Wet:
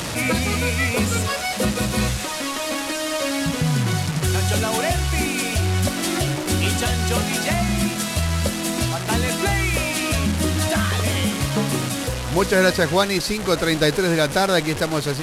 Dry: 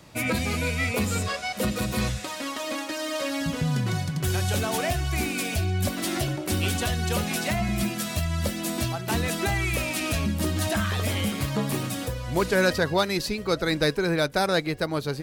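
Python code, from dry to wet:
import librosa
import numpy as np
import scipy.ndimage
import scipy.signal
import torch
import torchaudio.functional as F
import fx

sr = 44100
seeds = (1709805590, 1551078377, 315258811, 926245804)

y = fx.delta_mod(x, sr, bps=64000, step_db=-26.5)
y = y * 10.0 ** (5.0 / 20.0)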